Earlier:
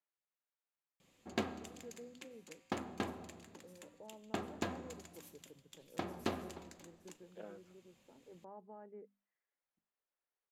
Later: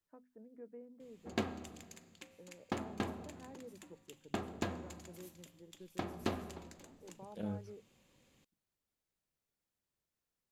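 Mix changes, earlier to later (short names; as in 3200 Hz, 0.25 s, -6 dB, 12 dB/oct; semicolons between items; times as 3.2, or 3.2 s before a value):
first voice: entry -1.25 s; second voice: remove BPF 530–2200 Hz; master: add low shelf 130 Hz +7 dB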